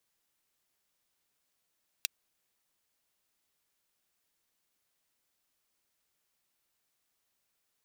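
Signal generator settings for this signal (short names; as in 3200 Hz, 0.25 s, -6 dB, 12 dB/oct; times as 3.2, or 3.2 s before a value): closed hi-hat, high-pass 2800 Hz, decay 0.02 s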